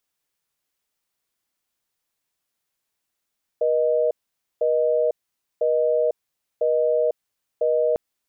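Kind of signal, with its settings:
call progress tone busy tone, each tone −20 dBFS 4.35 s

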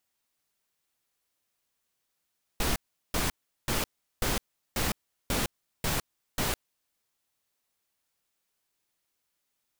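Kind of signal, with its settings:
noise bursts pink, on 0.16 s, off 0.38 s, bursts 8, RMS −28 dBFS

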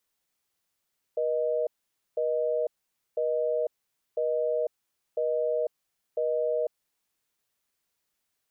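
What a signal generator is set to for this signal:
call progress tone busy tone, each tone −27 dBFS 5.89 s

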